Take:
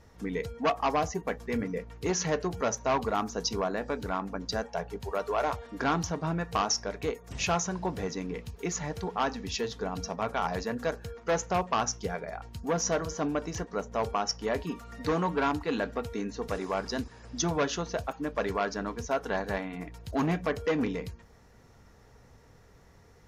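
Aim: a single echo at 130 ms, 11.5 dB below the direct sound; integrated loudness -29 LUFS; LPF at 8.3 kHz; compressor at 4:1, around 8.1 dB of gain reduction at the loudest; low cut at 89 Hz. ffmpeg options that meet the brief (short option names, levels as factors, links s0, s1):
-af "highpass=89,lowpass=8300,acompressor=threshold=0.0224:ratio=4,aecho=1:1:130:0.266,volume=2.51"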